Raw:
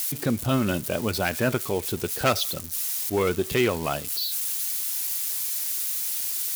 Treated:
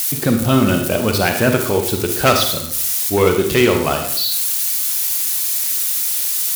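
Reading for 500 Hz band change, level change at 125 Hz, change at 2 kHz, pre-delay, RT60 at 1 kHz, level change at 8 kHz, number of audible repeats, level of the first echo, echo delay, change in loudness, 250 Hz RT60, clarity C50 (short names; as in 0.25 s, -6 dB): +9.5 dB, +9.0 dB, +9.0 dB, 35 ms, 0.65 s, +9.5 dB, none, none, none, +9.5 dB, 0.65 s, 6.0 dB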